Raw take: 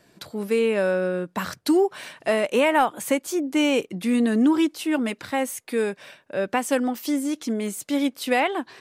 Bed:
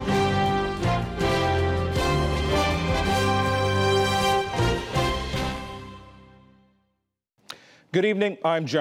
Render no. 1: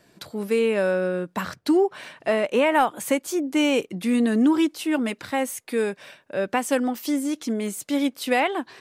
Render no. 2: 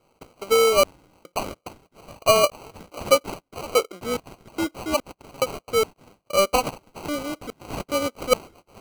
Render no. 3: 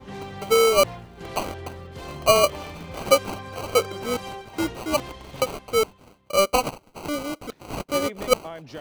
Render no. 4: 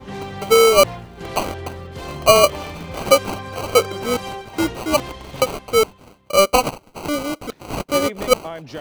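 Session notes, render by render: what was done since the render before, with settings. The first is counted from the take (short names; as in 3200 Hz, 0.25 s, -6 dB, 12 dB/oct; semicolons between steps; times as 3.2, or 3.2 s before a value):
1.41–2.72 high shelf 5500 Hz -9 dB
LFO high-pass square 1.2 Hz 530–6400 Hz; sample-and-hold 25×
add bed -14.5 dB
gain +5.5 dB; limiter -3 dBFS, peak gain reduction 2.5 dB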